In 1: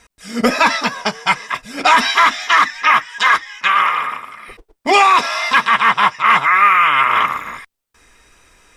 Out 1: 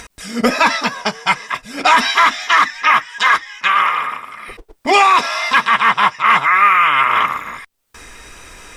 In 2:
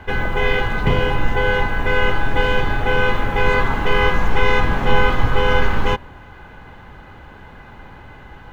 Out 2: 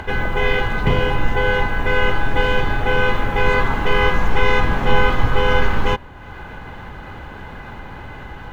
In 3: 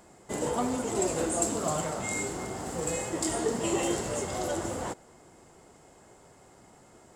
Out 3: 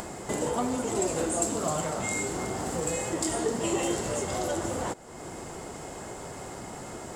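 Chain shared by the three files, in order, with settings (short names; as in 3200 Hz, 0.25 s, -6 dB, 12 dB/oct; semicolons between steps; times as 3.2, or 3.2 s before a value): upward compressor, threshold -25 dBFS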